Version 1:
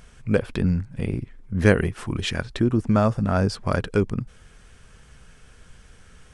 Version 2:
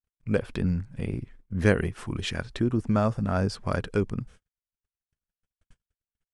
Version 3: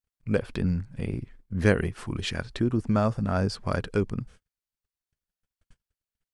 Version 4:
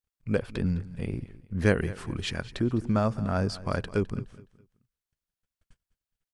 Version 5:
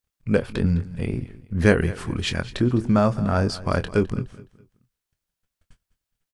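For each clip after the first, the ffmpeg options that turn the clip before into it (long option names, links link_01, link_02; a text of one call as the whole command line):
ffmpeg -i in.wav -af "agate=range=-56dB:threshold=-41dB:ratio=16:detection=peak,volume=-4.5dB" out.wav
ffmpeg -i in.wav -af "equalizer=frequency=4500:width_type=o:width=0.22:gain=3.5" out.wav
ffmpeg -i in.wav -af "aecho=1:1:209|418|627:0.126|0.0403|0.0129,volume=-1.5dB" out.wav
ffmpeg -i in.wav -filter_complex "[0:a]asplit=2[link_01][link_02];[link_02]adelay=24,volume=-10.5dB[link_03];[link_01][link_03]amix=inputs=2:normalize=0,volume=6dB" out.wav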